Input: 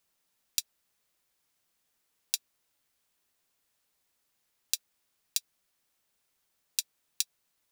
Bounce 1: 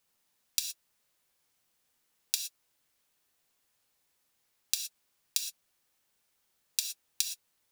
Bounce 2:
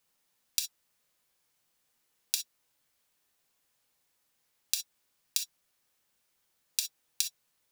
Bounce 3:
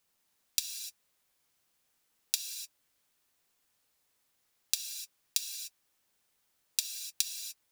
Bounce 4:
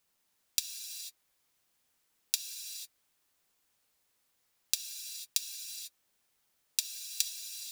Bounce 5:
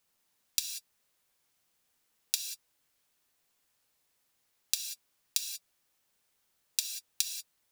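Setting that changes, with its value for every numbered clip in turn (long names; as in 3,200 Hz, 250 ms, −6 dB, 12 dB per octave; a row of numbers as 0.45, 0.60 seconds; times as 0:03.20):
reverb whose tail is shaped and stops, gate: 140, 80, 320, 520, 210 milliseconds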